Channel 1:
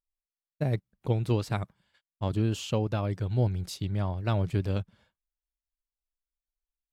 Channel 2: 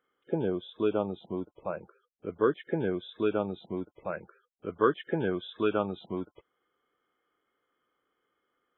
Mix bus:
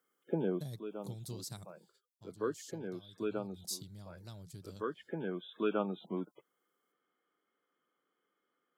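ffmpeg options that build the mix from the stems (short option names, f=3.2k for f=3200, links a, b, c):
-filter_complex "[0:a]highpass=84,acompressor=threshold=-39dB:ratio=2,aexciter=amount=10.5:drive=5.9:freq=3.9k,volume=-6dB,afade=t=out:st=1.84:d=0.2:silence=0.281838,afade=t=in:st=3.42:d=0.24:silence=0.446684,asplit=2[a][b];[1:a]highpass=f=180:w=0.5412,highpass=f=180:w=1.3066,volume=-5dB[c];[b]apad=whole_len=387069[d];[c][d]sidechaincompress=threshold=-59dB:ratio=3:attack=10:release=1070[e];[a][e]amix=inputs=2:normalize=0,equalizer=f=150:w=1.4:g=8"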